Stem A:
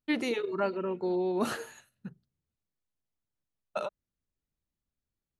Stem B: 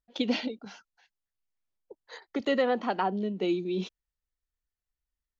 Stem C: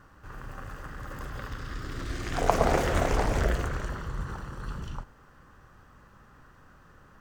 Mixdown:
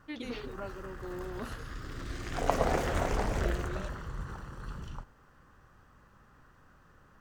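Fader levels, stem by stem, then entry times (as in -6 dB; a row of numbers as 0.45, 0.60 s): -12.0, -14.0, -5.0 dB; 0.00, 0.00, 0.00 s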